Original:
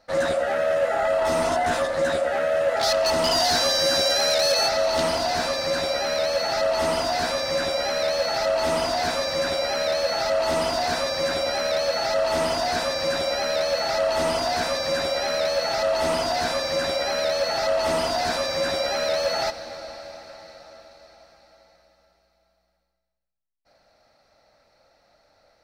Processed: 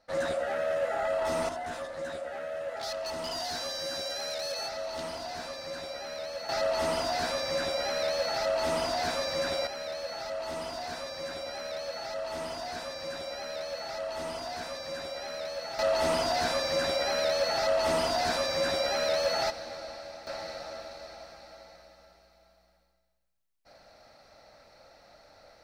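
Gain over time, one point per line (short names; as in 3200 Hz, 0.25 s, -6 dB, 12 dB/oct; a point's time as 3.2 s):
-7.5 dB
from 1.49 s -14 dB
from 6.49 s -6 dB
from 9.67 s -13 dB
from 15.79 s -4 dB
from 20.27 s +5 dB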